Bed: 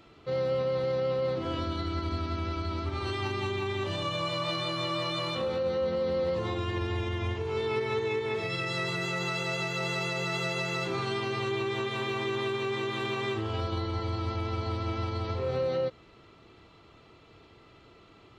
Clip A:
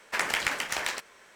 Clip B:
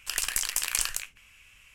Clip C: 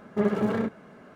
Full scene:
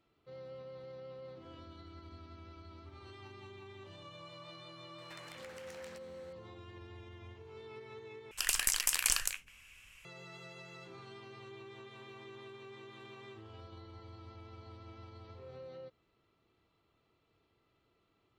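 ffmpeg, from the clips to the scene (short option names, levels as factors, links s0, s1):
-filter_complex "[0:a]volume=0.1[s0];[1:a]acompressor=threshold=0.01:ratio=6:attack=3.2:release=140:knee=1:detection=peak[s1];[s0]asplit=2[s2][s3];[s2]atrim=end=8.314[s4];[2:a]atrim=end=1.74,asetpts=PTS-STARTPTS,volume=0.75[s5];[s3]atrim=start=10.046[s6];[s1]atrim=end=1.35,asetpts=PTS-STARTPTS,volume=0.299,afade=t=in:d=0.004:c=hsin,afade=t=out:st=1.346:d=0.004:c=hsin,adelay=4980[s7];[s4][s5]acrossfade=d=0.004:c1=hsin:c2=hsin[s8];[s8][s6]acrossfade=d=0.004:c1=hsin:c2=hsin[s9];[s9][s7]amix=inputs=2:normalize=0"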